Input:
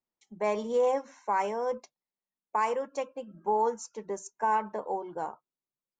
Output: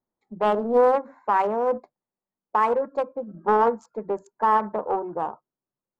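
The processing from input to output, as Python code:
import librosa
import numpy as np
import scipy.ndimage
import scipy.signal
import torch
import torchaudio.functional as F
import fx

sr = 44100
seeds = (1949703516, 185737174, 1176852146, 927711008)

y = fx.wiener(x, sr, points=15)
y = fx.lowpass(y, sr, hz=1400.0, slope=6)
y = fx.doppler_dist(y, sr, depth_ms=0.32)
y = y * 10.0 ** (9.0 / 20.0)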